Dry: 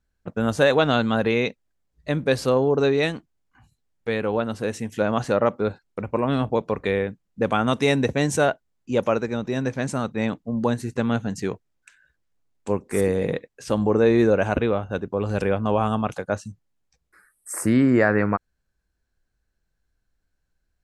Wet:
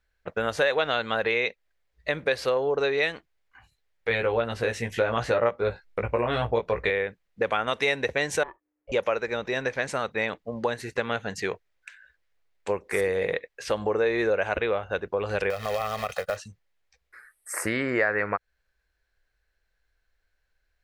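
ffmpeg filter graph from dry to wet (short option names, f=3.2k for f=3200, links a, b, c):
-filter_complex "[0:a]asettb=1/sr,asplit=3[a][b][c];[a]atrim=end=4.094[d];[b]atrim=start=4.09:end=6.9,asetpts=PTS-STARTPTS,afade=t=in:d=0.004:c=qsin,afade=t=out:st=2.806:d=0.004:c=qsin,lowshelf=f=170:g=11.5,asplit=2[e][f];[f]adelay=17,volume=-3.5dB[g];[e][g]amix=inputs=2:normalize=0,atrim=end_sample=123921[h];[c]atrim=start=6.896[i];[d][h]acrossfade=d=0.004:c1=hsin:c2=qsin[j];[j][i]acrossfade=d=0.004:c1=qsin:c2=hsin,asettb=1/sr,asplit=3[k][l][m];[k]atrim=end=8.434[n];[l]atrim=start=8.43:end=8.92,asetpts=PTS-STARTPTS,afade=t=in:d=0.004:c=qsin,afade=t=out:st=0.486:d=0.004:c=qsin,acompressor=threshold=-33dB:ratio=3:attack=3.2:release=140:knee=1:detection=peak,aeval=exprs='val(0)*sin(2*PI*300*n/s)':c=same,lowpass=1.4k[o];[m]atrim=start=8.916[p];[n][o]acrossfade=d=0.004:c1=hsin:c2=qsin[q];[q][p]acrossfade=d=0.004:c1=qsin:c2=hsin,asettb=1/sr,asplit=3[r][s][t];[r]atrim=end=15.504[u];[s]atrim=start=15.5:end=16.37,asetpts=PTS-STARTPTS,afade=t=in:d=0.004:c=qsin,afade=t=out:st=0.866:d=0.004:c=qsin,acrusher=bits=3:mode=log:mix=0:aa=0.000001,aecho=1:1:1.6:0.7,atrim=end_sample=38367,acompressor=threshold=-25dB:ratio=4:attack=3.2:release=140:knee=1:detection=peak[v];[t]atrim=start=16.366[w];[u][v]acrossfade=d=0.004:c1=hsin:c2=qsin[x];[x][w]acrossfade=d=0.004:c1=qsin:c2=hsin,equalizer=f=125:t=o:w=1:g=-8,equalizer=f=250:t=o:w=1:g=-11,equalizer=f=500:t=o:w=1:g=5,equalizer=f=2k:t=o:w=1:g=9,equalizer=f=4k:t=o:w=1:g=4,equalizer=f=8k:t=o:w=1:g=-4,acompressor=threshold=-24dB:ratio=2.5"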